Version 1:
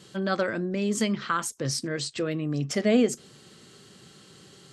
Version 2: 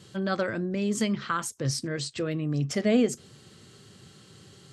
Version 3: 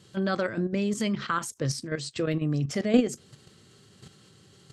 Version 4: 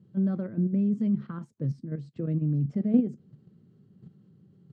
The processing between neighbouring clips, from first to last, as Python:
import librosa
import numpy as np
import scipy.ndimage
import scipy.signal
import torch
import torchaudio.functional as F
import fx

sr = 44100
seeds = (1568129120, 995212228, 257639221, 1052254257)

y1 = fx.peak_eq(x, sr, hz=95.0, db=11.0, octaves=0.92)
y1 = y1 * 10.0 ** (-2.0 / 20.0)
y2 = fx.level_steps(y1, sr, step_db=10)
y2 = y2 * 10.0 ** (4.0 / 20.0)
y3 = fx.bandpass_q(y2, sr, hz=180.0, q=2.2)
y3 = y3 * 10.0 ** (4.5 / 20.0)